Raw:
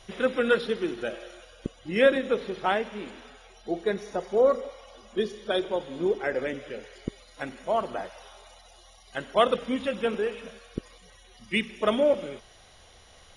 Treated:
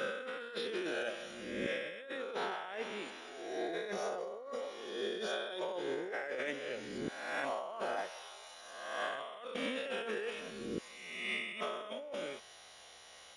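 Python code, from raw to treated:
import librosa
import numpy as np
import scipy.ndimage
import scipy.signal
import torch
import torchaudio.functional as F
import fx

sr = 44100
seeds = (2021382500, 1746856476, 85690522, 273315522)

y = fx.spec_swells(x, sr, rise_s=1.21)
y = fx.highpass(y, sr, hz=670.0, slope=6)
y = fx.over_compress(y, sr, threshold_db=-33.0, ratio=-1.0)
y = F.gain(torch.from_numpy(y), -7.0).numpy()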